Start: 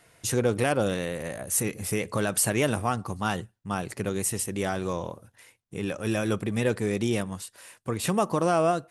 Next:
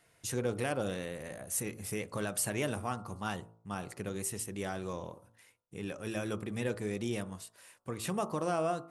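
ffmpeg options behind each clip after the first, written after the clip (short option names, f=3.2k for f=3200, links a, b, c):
-af "bandreject=f=55.65:t=h:w=4,bandreject=f=111.3:t=h:w=4,bandreject=f=166.95:t=h:w=4,bandreject=f=222.6:t=h:w=4,bandreject=f=278.25:t=h:w=4,bandreject=f=333.9:t=h:w=4,bandreject=f=389.55:t=h:w=4,bandreject=f=445.2:t=h:w=4,bandreject=f=500.85:t=h:w=4,bandreject=f=556.5:t=h:w=4,bandreject=f=612.15:t=h:w=4,bandreject=f=667.8:t=h:w=4,bandreject=f=723.45:t=h:w=4,bandreject=f=779.1:t=h:w=4,bandreject=f=834.75:t=h:w=4,bandreject=f=890.4:t=h:w=4,bandreject=f=946.05:t=h:w=4,bandreject=f=1.0017k:t=h:w=4,bandreject=f=1.05735k:t=h:w=4,bandreject=f=1.113k:t=h:w=4,bandreject=f=1.16865k:t=h:w=4,bandreject=f=1.2243k:t=h:w=4,bandreject=f=1.27995k:t=h:w=4,bandreject=f=1.3356k:t=h:w=4,bandreject=f=1.39125k:t=h:w=4,bandreject=f=1.4469k:t=h:w=4,volume=-8.5dB"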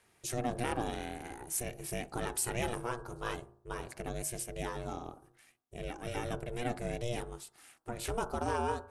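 -af "aeval=exprs='val(0)*sin(2*PI*240*n/s)':c=same,volume=2dB"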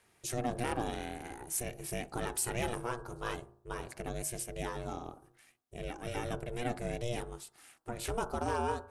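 -af "volume=22dB,asoftclip=hard,volume=-22dB"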